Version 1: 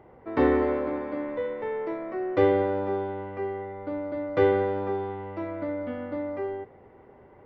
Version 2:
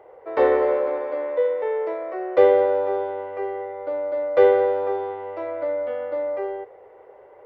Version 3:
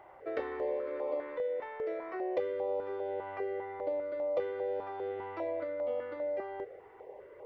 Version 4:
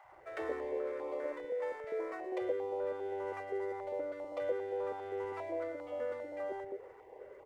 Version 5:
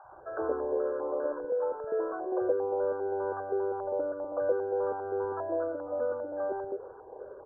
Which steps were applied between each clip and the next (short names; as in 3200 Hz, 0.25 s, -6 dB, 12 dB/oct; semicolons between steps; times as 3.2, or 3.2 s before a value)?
resonant low shelf 330 Hz -14 dB, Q 3; gain +2 dB
compressor 6:1, threshold -30 dBFS, peak gain reduction 18.5 dB; stepped notch 5 Hz 470–1600 Hz
median filter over 9 samples; three bands offset in time highs, lows, mids 40/120 ms, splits 170/670 Hz
brick-wall FIR low-pass 1700 Hz; gain +7 dB